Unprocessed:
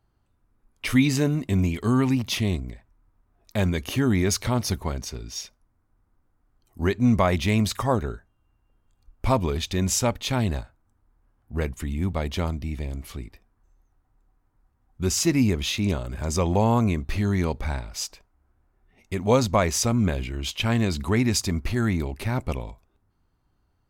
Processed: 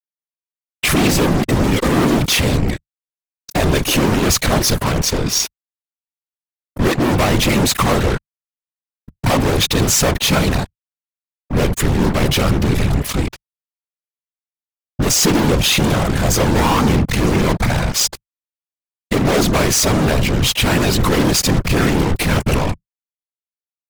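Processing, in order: fuzz box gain 42 dB, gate -42 dBFS; whisperiser

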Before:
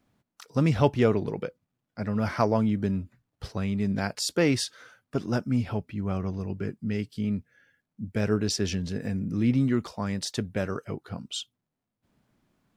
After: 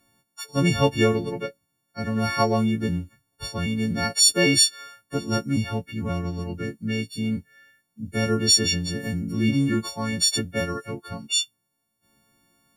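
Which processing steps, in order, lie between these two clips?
frequency quantiser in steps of 4 st; dynamic EQ 1000 Hz, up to -3 dB, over -39 dBFS, Q 1; gain +2.5 dB

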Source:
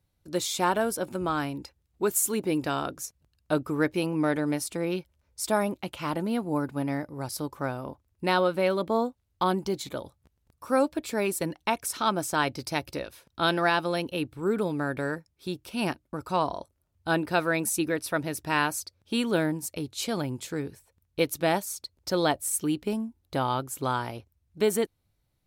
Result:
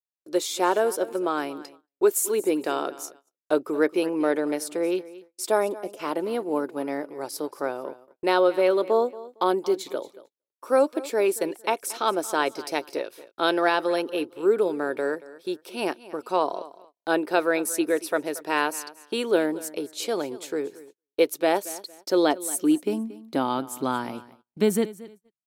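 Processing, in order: spectral gain 5.74–6, 760–4800 Hz -14 dB; feedback echo 0.229 s, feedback 26%, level -18 dB; high-pass sweep 400 Hz -> 180 Hz, 21.64–24.86; gate -48 dBFS, range -35 dB

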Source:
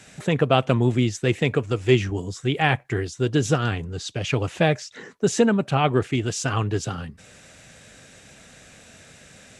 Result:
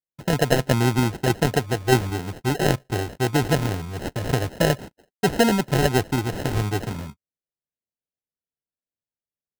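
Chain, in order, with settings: gate -36 dBFS, range -56 dB; 4.02–4.44 bell 7100 Hz +6.5 dB 1.5 oct; sample-and-hold 38×

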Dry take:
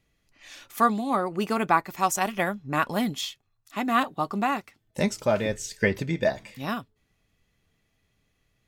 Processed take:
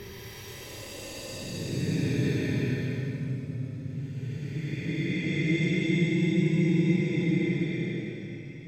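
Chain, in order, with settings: Paulstretch 39×, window 0.05 s, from 5.96

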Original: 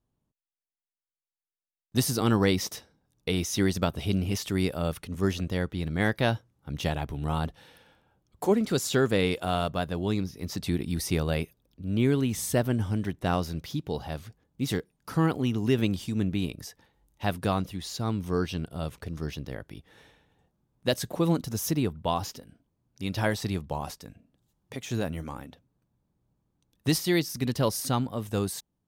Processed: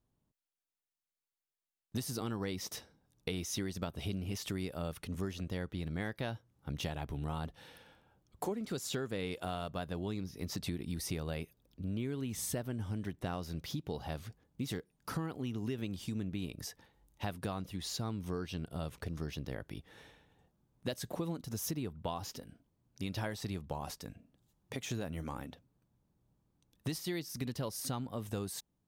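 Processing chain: compressor 6:1, threshold -34 dBFS, peak gain reduction 15.5 dB; gain -1 dB

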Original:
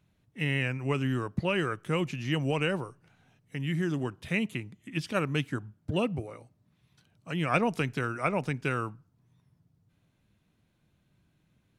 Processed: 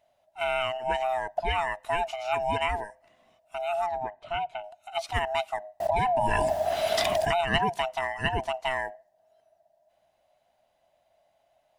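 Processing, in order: band-swap scrambler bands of 500 Hz; 3.86–4.64 tape spacing loss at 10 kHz 25 dB; 5.8–7.41 fast leveller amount 100%; gain +1 dB

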